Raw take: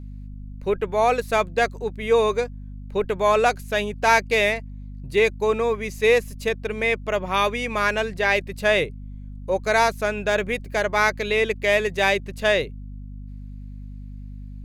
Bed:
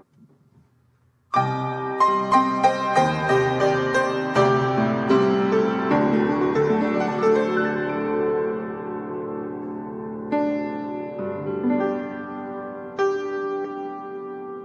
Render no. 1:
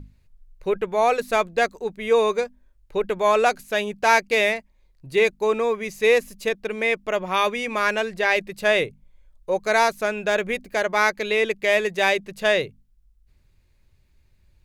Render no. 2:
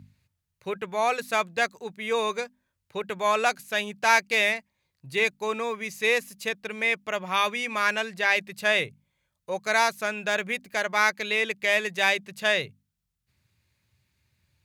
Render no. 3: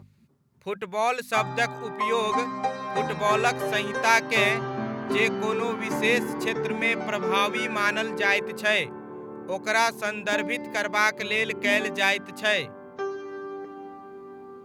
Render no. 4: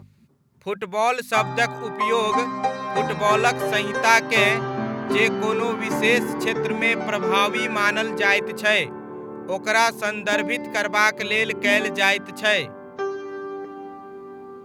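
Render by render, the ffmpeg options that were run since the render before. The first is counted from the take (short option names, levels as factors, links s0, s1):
-af "bandreject=f=50:t=h:w=6,bandreject=f=100:t=h:w=6,bandreject=f=150:t=h:w=6,bandreject=f=200:t=h:w=6,bandreject=f=250:t=h:w=6"
-af "highpass=f=94:w=0.5412,highpass=f=94:w=1.3066,equalizer=f=400:t=o:w=2:g=-9.5"
-filter_complex "[1:a]volume=0.335[s0];[0:a][s0]amix=inputs=2:normalize=0"
-af "volume=1.58"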